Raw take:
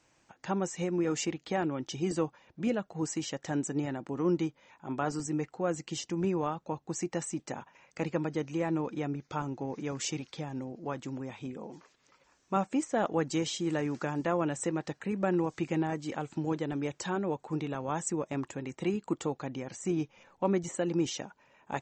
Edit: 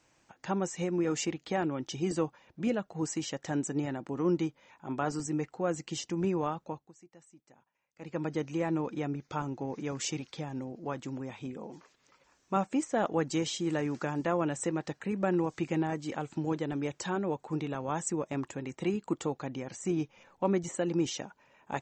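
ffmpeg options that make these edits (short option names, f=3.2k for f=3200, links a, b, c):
-filter_complex "[0:a]asplit=3[a][b][c];[a]atrim=end=6.92,asetpts=PTS-STARTPTS,afade=t=out:st=6.61:d=0.31:silence=0.0707946[d];[b]atrim=start=6.92:end=7.97,asetpts=PTS-STARTPTS,volume=-23dB[e];[c]atrim=start=7.97,asetpts=PTS-STARTPTS,afade=t=in:d=0.31:silence=0.0707946[f];[d][e][f]concat=n=3:v=0:a=1"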